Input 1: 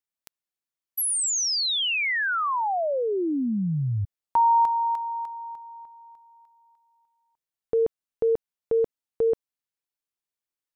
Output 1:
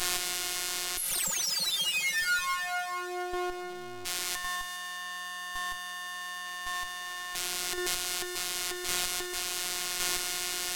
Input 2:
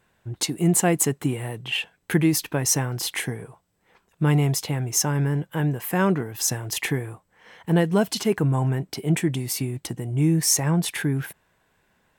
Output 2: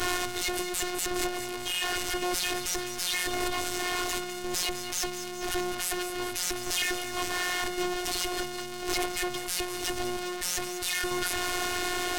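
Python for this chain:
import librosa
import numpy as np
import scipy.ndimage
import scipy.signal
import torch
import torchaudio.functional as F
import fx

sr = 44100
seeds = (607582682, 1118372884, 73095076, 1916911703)

y = np.sign(x) * np.sqrt(np.mean(np.square(x)))
y = scipy.signal.sosfilt(scipy.signal.butter(4, 53.0, 'highpass', fs=sr, output='sos'), y)
y = fx.hpss(y, sr, part='percussive', gain_db=7)
y = fx.low_shelf(y, sr, hz=480.0, db=-6.0)
y = fx.cheby_harmonics(y, sr, harmonics=(6,), levels_db=(-7,), full_scale_db=-13.0)
y = fx.chopper(y, sr, hz=0.9, depth_pct=60, duty_pct=15)
y = fx.tube_stage(y, sr, drive_db=32.0, bias=0.65)
y = fx.robotise(y, sr, hz=359.0)
y = fx.echo_thinned(y, sr, ms=205, feedback_pct=67, hz=1200.0, wet_db=-10.0)
y = np.interp(np.arange(len(y)), np.arange(len(y))[::2], y[::2])
y = y * librosa.db_to_amplitude(7.5)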